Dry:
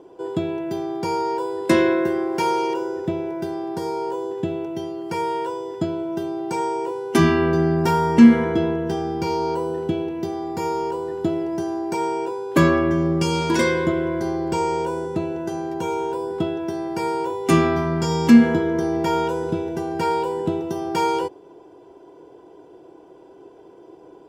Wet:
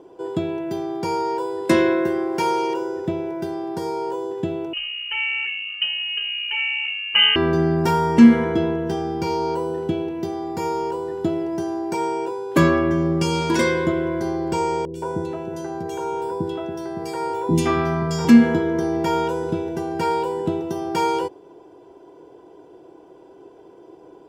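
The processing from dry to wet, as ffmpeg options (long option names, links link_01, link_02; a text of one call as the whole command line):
ffmpeg -i in.wav -filter_complex "[0:a]asettb=1/sr,asplit=3[link_01][link_02][link_03];[link_01]atrim=end=4.734[link_04];[link_02]atrim=start=4.73:end=7.36,asetpts=PTS-STARTPTS,afade=type=in:duration=0.004:curve=qsin,afade=type=out:start_time=2.626:duration=0.004:curve=qsin,lowpass=frequency=2700:width_type=q:width=0.5098,lowpass=frequency=2700:width_type=q:width=0.6013,lowpass=frequency=2700:width_type=q:width=0.9,lowpass=frequency=2700:width_type=q:width=2.563,afreqshift=-3200[link_05];[link_03]atrim=start=7.356[link_06];[link_04][link_05]acrossfade=duration=0.004:curve1=hsin:curve2=qsin[link_07];[link_07][link_06]acrossfade=duration=0.004:curve1=qsin:curve2=hsin,asettb=1/sr,asplit=3[link_08][link_09][link_10];[link_08]atrim=end=14.854[link_11];[link_09]atrim=start=14.85:end=18.25,asetpts=PTS-STARTPTS,afade=type=in:duration=0.004:curve=qsin,afade=type=out:start_time=3.396:duration=0.004:curve=qsin,acrossover=split=390|2600[link_12][link_13][link_14];[link_14]adelay=90[link_15];[link_13]adelay=170[link_16];[link_12][link_16][link_15]amix=inputs=3:normalize=0,atrim=end_sample=149940[link_17];[link_10]atrim=start=18.246[link_18];[link_11][link_17]acrossfade=duration=0.004:curve1=hsin:curve2=qsin[link_19];[link_19][link_18]acrossfade=duration=0.004:curve1=qsin:curve2=hsin" out.wav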